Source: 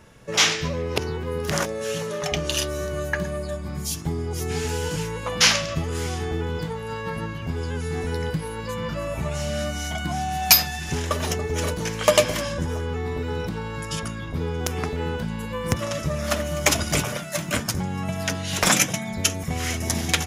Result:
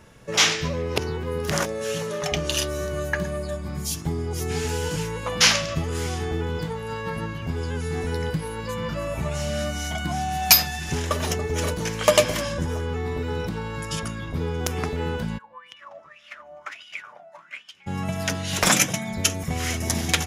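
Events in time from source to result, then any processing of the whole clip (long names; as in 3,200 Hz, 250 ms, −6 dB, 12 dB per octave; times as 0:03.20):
0:15.37–0:17.86: LFO wah 2.5 Hz → 0.95 Hz 700–3,100 Hz, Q 10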